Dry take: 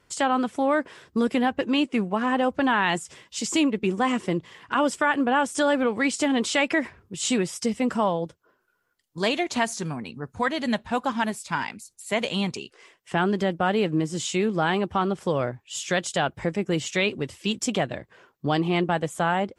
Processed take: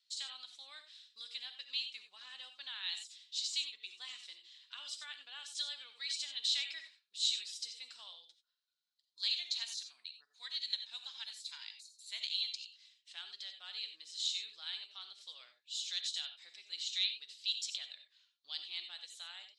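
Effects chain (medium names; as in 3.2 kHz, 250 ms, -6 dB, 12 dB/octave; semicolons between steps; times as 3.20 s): ladder band-pass 4.2 kHz, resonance 80%; reverberation, pre-delay 3 ms, DRR 7.5 dB; trim +1 dB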